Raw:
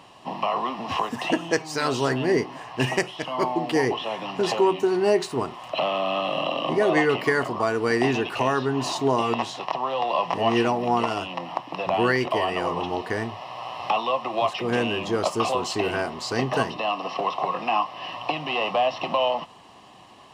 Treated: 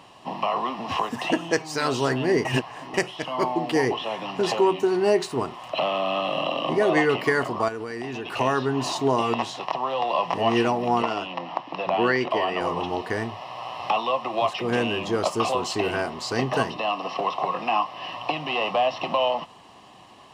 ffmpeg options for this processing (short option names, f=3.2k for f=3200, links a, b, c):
-filter_complex "[0:a]asettb=1/sr,asplit=3[a][b][c];[a]atrim=end=7.684[d];[b]atrim=start=7.68:end=8.34,asetpts=PTS-STARTPTS,afade=t=in:d=0.004:c=qsin,afade=t=out:st=0.656:d=0.004:c=qsin,acompressor=threshold=-28dB:ratio=10:attack=3.2:release=140:knee=1:detection=peak[e];[c]atrim=start=8.336[f];[d][e]acrossfade=d=0.004:c1=hsin:c2=qsin[g];[g][f]acrossfade=d=0.004:c1=qsin:c2=hsin,asettb=1/sr,asplit=3[h][i][j];[h]atrim=end=11.024[k];[i]atrim=start=11.02:end=12.61,asetpts=PTS-STARTPTS,afade=t=in:d=0.004:c=qsin,afade=t=out:st=1.586:d=0.004:c=qsin,highpass=150,lowpass=5.2k[l];[j]atrim=start=12.606[m];[k][l]acrossfade=d=0.004:c1=hsin:c2=qsin[n];[n][m]acrossfade=d=0.004:c1=qsin:c2=hsin,asplit=3[o][p][q];[o]atrim=end=2.452[r];[p]atrim=start=2.448:end=2.942,asetpts=PTS-STARTPTS,areverse[s];[q]atrim=start=2.938[t];[r][s]acrossfade=d=0.004:c1=hsin:c2=hsin[u];[u][t]acrossfade=d=0.004:c1=hsin:c2=hsin"